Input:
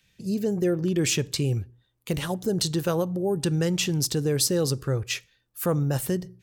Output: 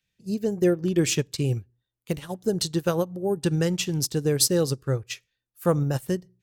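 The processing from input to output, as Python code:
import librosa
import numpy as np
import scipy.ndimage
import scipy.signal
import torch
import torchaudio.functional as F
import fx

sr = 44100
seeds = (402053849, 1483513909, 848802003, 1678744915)

y = fx.upward_expand(x, sr, threshold_db=-33.0, expansion=2.5)
y = F.gain(torch.from_numpy(y), 4.5).numpy()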